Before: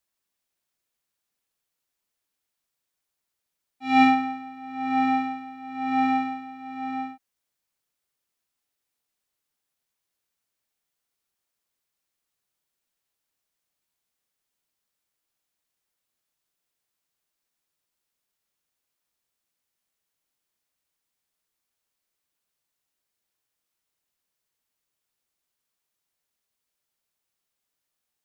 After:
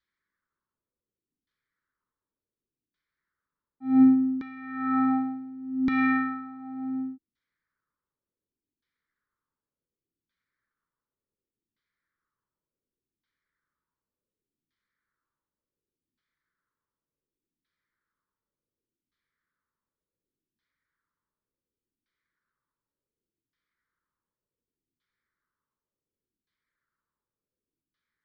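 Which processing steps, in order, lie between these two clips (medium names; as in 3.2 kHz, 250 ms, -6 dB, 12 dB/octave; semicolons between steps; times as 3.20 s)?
LFO low-pass saw down 0.68 Hz 260–3000 Hz; static phaser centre 2.7 kHz, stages 6; trim +2.5 dB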